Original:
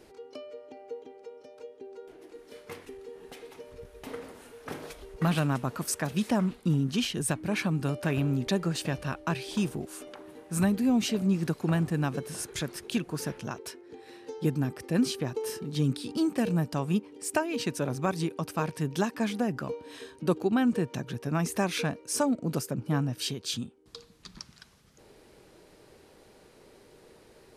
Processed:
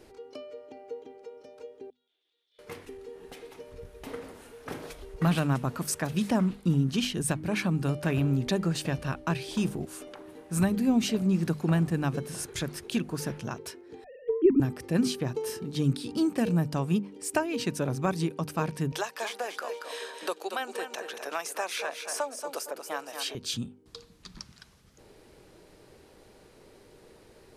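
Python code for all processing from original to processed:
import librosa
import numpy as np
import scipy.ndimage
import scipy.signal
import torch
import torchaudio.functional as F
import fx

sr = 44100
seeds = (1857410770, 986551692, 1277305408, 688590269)

y = fx.chain(x, sr, fx.bandpass_q(hz=3500.0, q=13.0),
    fx.transient(attack_db=-8, sustain_db=6), at=(1.9, 2.59))
y = fx.chain(y, sr, fx.sine_speech(),
    fx.tilt_eq(slope=-4.5), at=(14.04, 14.6))
y = fx.chain(y, sr, fx.highpass(hz=510.0, slope=24),
    fx.echo_feedback(ms=230, feedback_pct=21, wet_db=-9.5),
    fx.band_squash(depth_pct=70), at=(18.92, 23.35))
y = fx.low_shelf(y, sr, hz=140.0, db=5.5)
y = fx.hum_notches(y, sr, base_hz=50, count=5)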